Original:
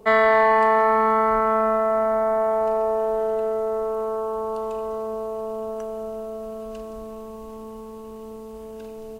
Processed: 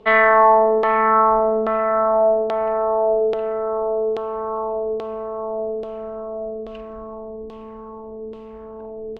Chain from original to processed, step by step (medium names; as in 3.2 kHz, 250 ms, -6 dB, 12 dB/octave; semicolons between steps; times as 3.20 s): tracing distortion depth 0.022 ms; LFO low-pass saw down 1.2 Hz 370–3500 Hz